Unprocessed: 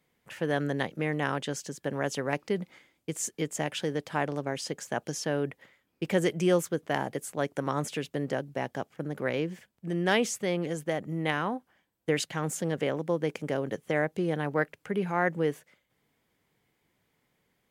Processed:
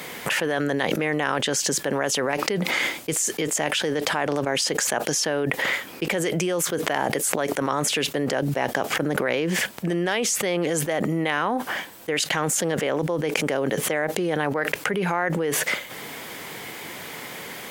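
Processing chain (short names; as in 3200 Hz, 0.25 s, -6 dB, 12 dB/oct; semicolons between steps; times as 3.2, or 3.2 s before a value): HPF 470 Hz 6 dB/oct; fast leveller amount 100%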